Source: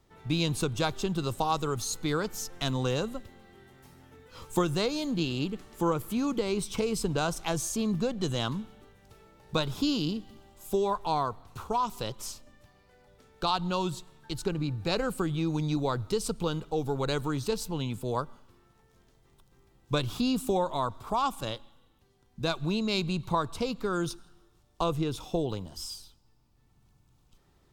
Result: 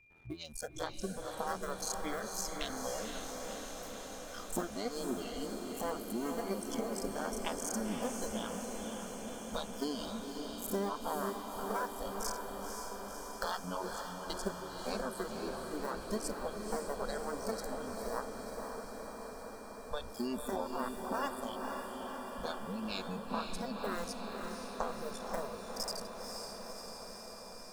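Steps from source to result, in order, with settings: cycle switcher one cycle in 2, muted; low shelf 240 Hz +5.5 dB; compressor 3:1, threshold -47 dBFS, peak gain reduction 19.5 dB; spectral noise reduction 22 dB; whine 2400 Hz -72 dBFS; on a send: diffused feedback echo 0.517 s, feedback 76%, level -4.5 dB; on the sum: gain +9.5 dB

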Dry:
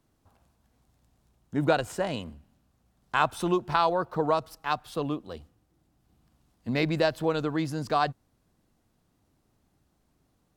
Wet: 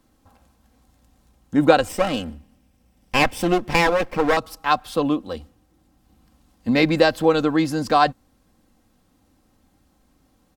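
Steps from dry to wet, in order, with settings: 1.88–4.37 minimum comb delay 0.37 ms; comb 3.8 ms, depth 50%; gain +8 dB

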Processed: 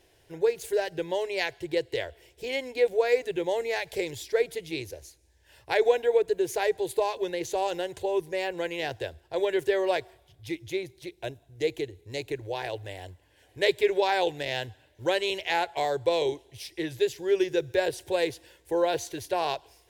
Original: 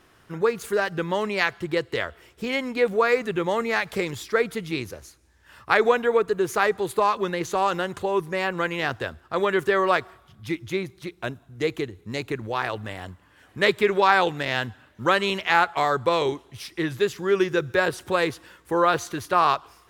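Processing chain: fixed phaser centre 510 Hz, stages 4; gain -1.5 dB

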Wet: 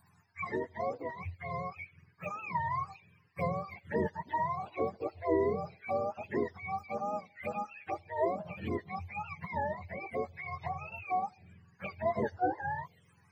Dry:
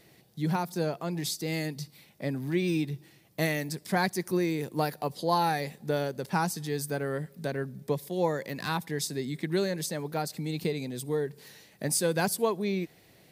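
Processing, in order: spectrum mirrored in octaves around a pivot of 580 Hz; tone controls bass -9 dB, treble +14 dB; envelope phaser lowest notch 500 Hz, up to 2400 Hz, full sweep at -30.5 dBFS

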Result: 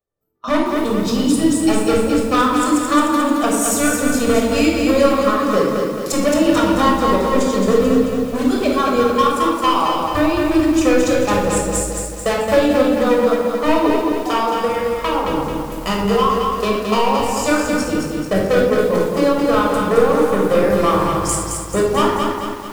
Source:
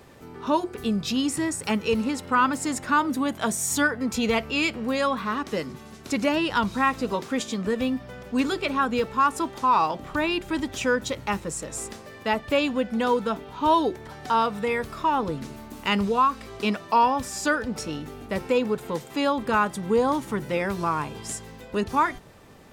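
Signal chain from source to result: bell 140 Hz -7.5 dB 1.8 oct; spectral noise reduction 20 dB; bell 2400 Hz -10.5 dB 1.9 oct; gate with hold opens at -38 dBFS; transient shaper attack +10 dB, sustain -2 dB; vocal rider 2 s; overloaded stage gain 20.5 dB; shoebox room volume 2900 m³, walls furnished, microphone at 6.1 m; lo-fi delay 0.219 s, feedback 55%, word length 7-bit, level -4 dB; gain +3.5 dB

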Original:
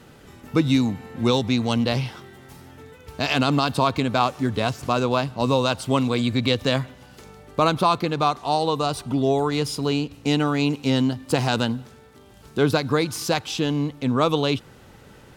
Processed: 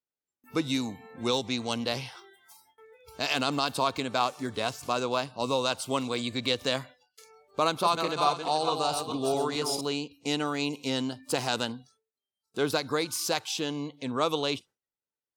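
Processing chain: 7.63–9.81 regenerating reverse delay 0.214 s, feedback 45%, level -5 dB; spectral noise reduction 24 dB; gate with hold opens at -47 dBFS; tone controls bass -10 dB, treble +6 dB; gain -6 dB

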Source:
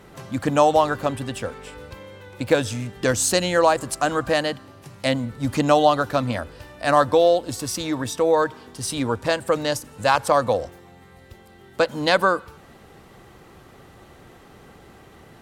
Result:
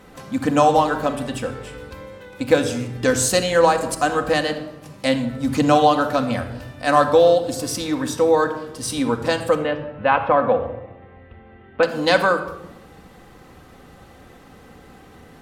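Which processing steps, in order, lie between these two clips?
9.55–11.83 steep low-pass 2900 Hz 36 dB/oct; reverb RT60 0.95 s, pre-delay 4 ms, DRR 4 dB

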